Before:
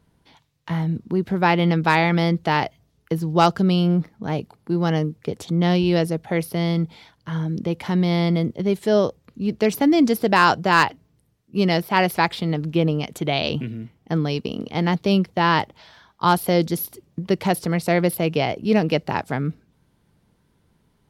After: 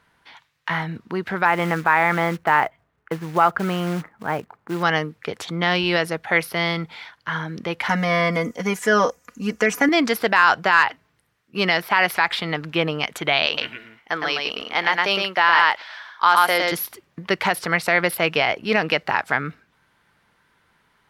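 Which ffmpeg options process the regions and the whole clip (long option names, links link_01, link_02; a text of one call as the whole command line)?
ffmpeg -i in.wav -filter_complex "[0:a]asettb=1/sr,asplit=3[link_01][link_02][link_03];[link_01]atrim=end=1.454[link_04];[link_02]atrim=start=1.45:end=4.83,asetpts=PTS-STARTPTS,afade=type=in:duration=0.004:curve=qsin,afade=type=out:start_time=3.376:duration=0.004:curve=qsin,lowpass=1500,acrusher=bits=7:mode=log:mix=0:aa=0.000001[link_05];[link_03]atrim=start=4.826[link_06];[link_04][link_05]acrossfade=duration=0.004:curve1=hsin:curve2=qsin[link_07];[link_07][link_06]acrossfade=duration=0.004:curve1=qsin:curve2=hsin,asettb=1/sr,asplit=3[link_08][link_09][link_10];[link_08]atrim=end=7.894[link_11];[link_09]atrim=start=7.89:end=9.89,asetpts=PTS-STARTPTS,afade=type=in:duration=0.004:curve=qsin,afade=type=out:start_time=1.996:duration=0.004:curve=qsin,acrossover=split=3200[link_12][link_13];[link_13]acompressor=threshold=-46dB:ratio=4:attack=1:release=60[link_14];[link_12][link_14]amix=inputs=2:normalize=0,highshelf=frequency=5000:width_type=q:width=3:gain=8.5,aecho=1:1:4.1:0.93,atrim=end_sample=88200[link_15];[link_10]atrim=start=9.886[link_16];[link_11][link_15]acrossfade=duration=0.004:curve1=hsin:curve2=qsin[link_17];[link_17][link_16]acrossfade=duration=0.004:curve1=qsin:curve2=hsin,asettb=1/sr,asplit=3[link_18][link_19][link_20];[link_18]atrim=end=13.464[link_21];[link_19]atrim=start=13.46:end=16.72,asetpts=PTS-STARTPTS,afade=type=in:duration=0.004:curve=qsin,afade=type=out:start_time=3.256:duration=0.004:curve=qsin,equalizer=frequency=140:width=0.72:gain=-15,aecho=1:1:112:0.668,atrim=end_sample=143766[link_22];[link_20]atrim=start=16.716[link_23];[link_21][link_22]acrossfade=duration=0.004:curve1=hsin:curve2=qsin[link_24];[link_24][link_23]acrossfade=duration=0.004:curve1=qsin:curve2=hsin,equalizer=frequency=1600:width=0.6:gain=14.5,alimiter=limit=-3dB:level=0:latency=1:release=75,lowshelf=frequency=490:gain=-9" out.wav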